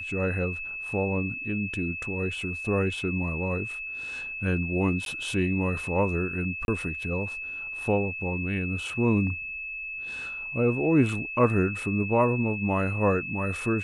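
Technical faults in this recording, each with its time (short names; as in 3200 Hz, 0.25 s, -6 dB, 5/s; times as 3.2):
tone 2600 Hz -33 dBFS
5.05–5.06 gap 12 ms
6.65–6.68 gap 31 ms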